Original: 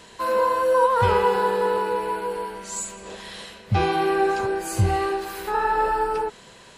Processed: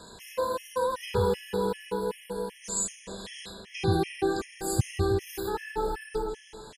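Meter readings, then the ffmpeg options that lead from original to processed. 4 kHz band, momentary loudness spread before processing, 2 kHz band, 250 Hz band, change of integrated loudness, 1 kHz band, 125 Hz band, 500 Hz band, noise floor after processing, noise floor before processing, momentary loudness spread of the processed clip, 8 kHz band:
-3.5 dB, 13 LU, -10.5 dB, -2.0 dB, -8.0 dB, -12.5 dB, -4.5 dB, -7.0 dB, -53 dBFS, -48 dBFS, 12 LU, +0.5 dB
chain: -filter_complex "[0:a]asplit=2[a][b];[b]adelay=158,lowpass=f=2.9k:p=1,volume=-7dB,asplit=2[c][d];[d]adelay=158,lowpass=f=2.9k:p=1,volume=0.41,asplit=2[e][f];[f]adelay=158,lowpass=f=2.9k:p=1,volume=0.41,asplit=2[g][h];[h]adelay=158,lowpass=f=2.9k:p=1,volume=0.41,asplit=2[i][j];[j]adelay=158,lowpass=f=2.9k:p=1,volume=0.41[k];[a][c][e][g][i][k]amix=inputs=6:normalize=0,acrossover=split=380|3000[l][m][n];[m]acompressor=threshold=-58dB:ratio=1.5[o];[l][o][n]amix=inputs=3:normalize=0,afftfilt=real='re*gt(sin(2*PI*2.6*pts/sr)*(1-2*mod(floor(b*sr/1024/1700),2)),0)':imag='im*gt(sin(2*PI*2.6*pts/sr)*(1-2*mod(floor(b*sr/1024/1700),2)),0)':win_size=1024:overlap=0.75,volume=2dB"

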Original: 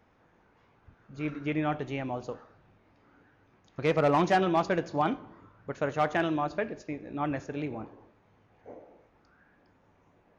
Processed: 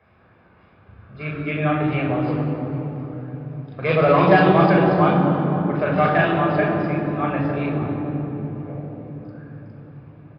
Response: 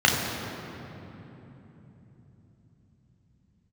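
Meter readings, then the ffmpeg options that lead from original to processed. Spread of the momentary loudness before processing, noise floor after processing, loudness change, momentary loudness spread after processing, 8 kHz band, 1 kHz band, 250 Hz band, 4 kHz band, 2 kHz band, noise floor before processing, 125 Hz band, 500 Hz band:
18 LU, -54 dBFS, +10.5 dB, 19 LU, n/a, +9.5 dB, +12.0 dB, +7.5 dB, +11.5 dB, -65 dBFS, +15.5 dB, +11.0 dB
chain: -filter_complex "[1:a]atrim=start_sample=2205,asetrate=35721,aresample=44100[a];[0:a][a]afir=irnorm=-1:irlink=0,aresample=11025,aresample=44100,volume=-11dB"

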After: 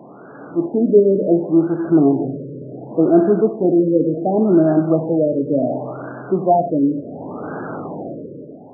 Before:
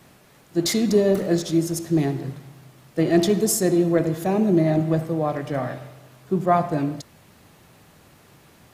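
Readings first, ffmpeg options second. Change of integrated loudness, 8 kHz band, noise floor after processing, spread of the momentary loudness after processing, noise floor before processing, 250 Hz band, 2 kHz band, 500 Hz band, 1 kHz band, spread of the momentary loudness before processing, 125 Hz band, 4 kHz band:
+5.0 dB, under -40 dB, -39 dBFS, 16 LU, -54 dBFS, +6.0 dB, n/a, +6.5 dB, +4.5 dB, 12 LU, 0.0 dB, under -40 dB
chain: -af "aeval=exprs='val(0)+0.5*0.0501*sgn(val(0))':c=same,flanger=delay=5.7:depth=1.4:regen=-68:speed=0.63:shape=sinusoidal,dynaudnorm=f=120:g=9:m=13dB,highpass=210,equalizer=f=270:t=q:w=4:g=7,equalizer=f=430:t=q:w=4:g=4,equalizer=f=670:t=q:w=4:g=3,equalizer=f=1k:t=q:w=4:g=-4,equalizer=f=1.5k:t=q:w=4:g=4,lowpass=f=2.2k:w=0.5412,lowpass=f=2.2k:w=1.3066,afftfilt=real='re*lt(b*sr/1024,580*pow(1700/580,0.5+0.5*sin(2*PI*0.69*pts/sr)))':imag='im*lt(b*sr/1024,580*pow(1700/580,0.5+0.5*sin(2*PI*0.69*pts/sr)))':win_size=1024:overlap=0.75,volume=-2.5dB"

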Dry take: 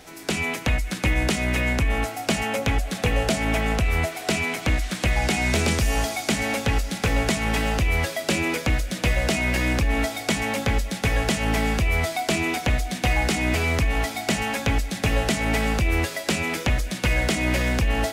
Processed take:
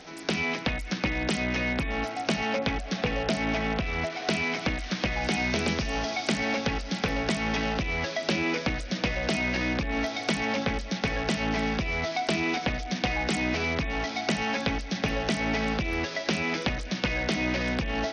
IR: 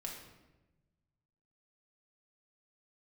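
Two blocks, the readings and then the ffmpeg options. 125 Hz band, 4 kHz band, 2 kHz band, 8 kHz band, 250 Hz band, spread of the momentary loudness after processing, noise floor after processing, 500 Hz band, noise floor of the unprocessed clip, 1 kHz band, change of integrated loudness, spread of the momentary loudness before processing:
-8.5 dB, -3.0 dB, -4.0 dB, -10.0 dB, -2.5 dB, 3 LU, -37 dBFS, -3.5 dB, -35 dBFS, -3.5 dB, -4.5 dB, 3 LU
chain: -af "acompressor=threshold=-26dB:ratio=2,lowshelf=f=130:t=q:w=1.5:g=-6" -ar 48000 -c:a sbc -b:a 64k

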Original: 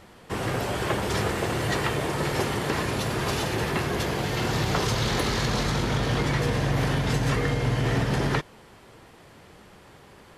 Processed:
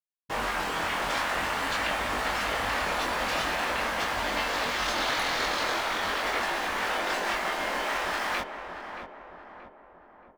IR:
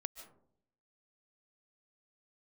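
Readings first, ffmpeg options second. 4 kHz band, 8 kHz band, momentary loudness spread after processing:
0.0 dB, -3.0 dB, 11 LU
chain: -filter_complex "[0:a]acrusher=bits=5:mix=0:aa=0.000001,lowpass=f=2.3k:p=1,afftfilt=real='re*lt(hypot(re,im),0.1)':imag='im*lt(hypot(re,im),0.1)':win_size=1024:overlap=0.75,flanger=delay=20:depth=4.6:speed=0.45,asplit=2[a][b];[b]adelay=627,lowpass=f=1.4k:p=1,volume=-7dB,asplit=2[c][d];[d]adelay=627,lowpass=f=1.4k:p=1,volume=0.54,asplit=2[e][f];[f]adelay=627,lowpass=f=1.4k:p=1,volume=0.54,asplit=2[g][h];[h]adelay=627,lowpass=f=1.4k:p=1,volume=0.54,asplit=2[i][j];[j]adelay=627,lowpass=f=1.4k:p=1,volume=0.54,asplit=2[k][l];[l]adelay=627,lowpass=f=1.4k:p=1,volume=0.54,asplit=2[m][n];[n]adelay=627,lowpass=f=1.4k:p=1,volume=0.54[o];[a][c][e][g][i][k][m][o]amix=inputs=8:normalize=0,volume=8dB"

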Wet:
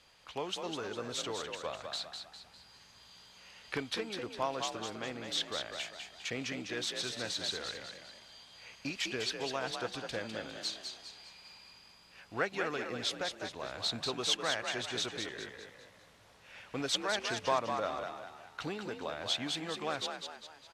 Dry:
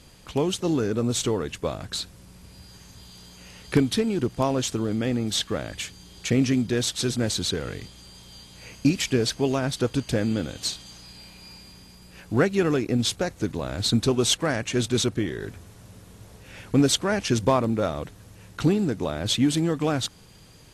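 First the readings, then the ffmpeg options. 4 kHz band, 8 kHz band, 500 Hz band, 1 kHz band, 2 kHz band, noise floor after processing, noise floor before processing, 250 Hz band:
-6.5 dB, -12.0 dB, -12.0 dB, -5.5 dB, -5.0 dB, -60 dBFS, -50 dBFS, -19.5 dB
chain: -filter_complex "[0:a]acrossover=split=560 5400:gain=0.141 1 0.224[a][b][c];[a][b][c]amix=inputs=3:normalize=0,asplit=6[d][e][f][g][h][i];[e]adelay=202,afreqshift=50,volume=-6dB[j];[f]adelay=404,afreqshift=100,volume=-13.1dB[k];[g]adelay=606,afreqshift=150,volume=-20.3dB[l];[h]adelay=808,afreqshift=200,volume=-27.4dB[m];[i]adelay=1010,afreqshift=250,volume=-34.5dB[n];[d][j][k][l][m][n]amix=inputs=6:normalize=0,volume=-6dB"

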